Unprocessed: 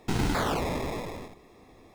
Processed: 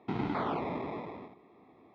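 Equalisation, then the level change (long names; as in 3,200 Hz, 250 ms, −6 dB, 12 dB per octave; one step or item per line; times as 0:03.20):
loudspeaker in its box 170–2,900 Hz, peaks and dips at 520 Hz −6 dB, 1,700 Hz −9 dB, 2,800 Hz −8 dB
notch filter 1,500 Hz, Q 20
−2.5 dB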